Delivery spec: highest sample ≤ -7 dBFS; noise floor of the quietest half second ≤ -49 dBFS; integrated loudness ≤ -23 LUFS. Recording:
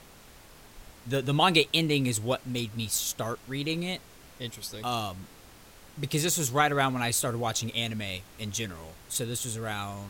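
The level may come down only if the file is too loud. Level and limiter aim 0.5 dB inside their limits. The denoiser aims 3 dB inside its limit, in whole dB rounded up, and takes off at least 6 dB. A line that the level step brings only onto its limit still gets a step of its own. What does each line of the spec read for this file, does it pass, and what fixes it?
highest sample -8.5 dBFS: pass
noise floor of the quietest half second -52 dBFS: pass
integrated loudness -28.5 LUFS: pass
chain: none needed

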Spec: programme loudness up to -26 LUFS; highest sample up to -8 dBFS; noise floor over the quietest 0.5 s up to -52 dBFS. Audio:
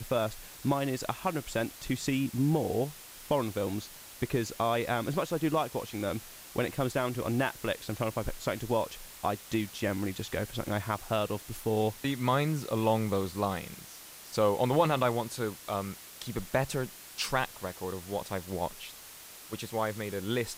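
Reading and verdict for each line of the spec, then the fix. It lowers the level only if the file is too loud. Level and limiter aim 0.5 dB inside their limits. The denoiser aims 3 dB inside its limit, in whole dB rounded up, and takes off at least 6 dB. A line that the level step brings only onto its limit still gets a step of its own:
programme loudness -32.0 LUFS: pass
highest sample -13.5 dBFS: pass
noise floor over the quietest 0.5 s -49 dBFS: fail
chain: noise reduction 6 dB, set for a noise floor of -49 dBFS

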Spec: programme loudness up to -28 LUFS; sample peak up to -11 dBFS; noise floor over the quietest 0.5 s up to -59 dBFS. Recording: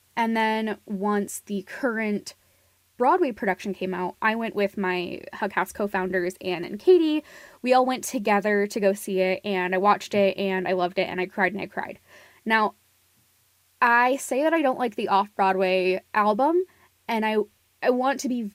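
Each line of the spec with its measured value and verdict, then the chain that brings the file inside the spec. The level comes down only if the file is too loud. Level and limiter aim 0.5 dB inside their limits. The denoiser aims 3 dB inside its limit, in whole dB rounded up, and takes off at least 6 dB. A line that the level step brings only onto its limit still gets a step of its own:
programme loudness -24.0 LUFS: fail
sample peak -7.5 dBFS: fail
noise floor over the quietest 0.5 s -64 dBFS: pass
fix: trim -4.5 dB

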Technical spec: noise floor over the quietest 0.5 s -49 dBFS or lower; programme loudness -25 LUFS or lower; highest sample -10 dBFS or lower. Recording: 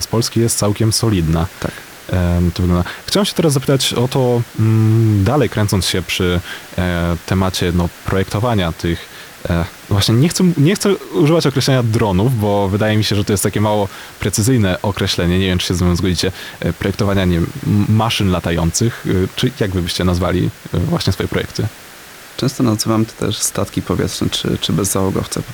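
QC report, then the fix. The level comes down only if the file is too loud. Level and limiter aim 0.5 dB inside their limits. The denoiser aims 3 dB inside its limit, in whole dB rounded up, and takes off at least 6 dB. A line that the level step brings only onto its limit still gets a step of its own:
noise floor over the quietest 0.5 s -37 dBFS: fail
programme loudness -16.0 LUFS: fail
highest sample -4.0 dBFS: fail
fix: noise reduction 6 dB, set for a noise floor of -37 dBFS; trim -9.5 dB

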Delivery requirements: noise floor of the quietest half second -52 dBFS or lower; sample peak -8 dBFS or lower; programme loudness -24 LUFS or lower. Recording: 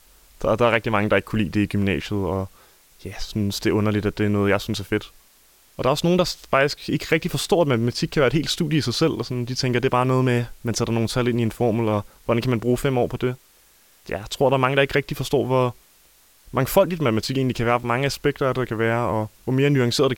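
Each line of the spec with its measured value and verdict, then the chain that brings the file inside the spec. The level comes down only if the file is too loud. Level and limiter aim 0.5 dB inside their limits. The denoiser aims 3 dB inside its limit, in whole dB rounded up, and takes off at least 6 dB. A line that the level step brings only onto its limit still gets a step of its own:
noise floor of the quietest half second -55 dBFS: pass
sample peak -4.0 dBFS: fail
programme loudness -22.0 LUFS: fail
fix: trim -2.5 dB; peak limiter -8.5 dBFS

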